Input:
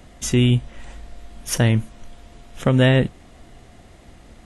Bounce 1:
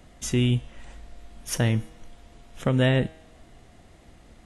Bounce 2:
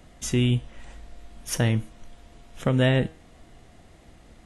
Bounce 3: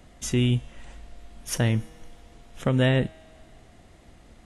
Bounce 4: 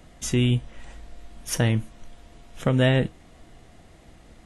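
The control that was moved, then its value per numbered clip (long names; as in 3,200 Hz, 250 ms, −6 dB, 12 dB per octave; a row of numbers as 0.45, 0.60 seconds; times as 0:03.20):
tuned comb filter, decay: 0.99, 0.47, 2.1, 0.17 seconds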